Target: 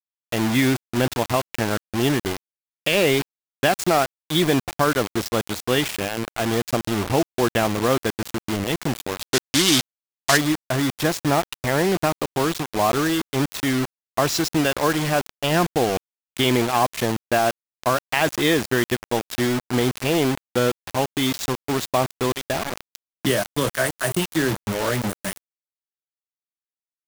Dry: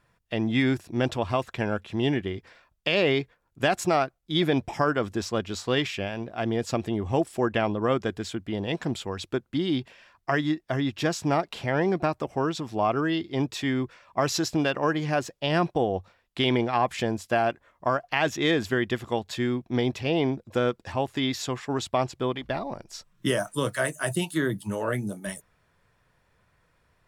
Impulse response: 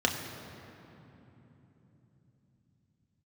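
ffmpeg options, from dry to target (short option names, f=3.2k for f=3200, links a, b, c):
-filter_complex "[0:a]acrusher=bits=4:mix=0:aa=0.000001,asplit=3[a][b][c];[a]afade=t=out:st=9.22:d=0.02[d];[b]equalizer=f=5.7k:w=0.4:g=14,afade=t=in:st=9.22:d=0.02,afade=t=out:st=10.36:d=0.02[e];[c]afade=t=in:st=10.36:d=0.02[f];[d][e][f]amix=inputs=3:normalize=0,volume=4dB"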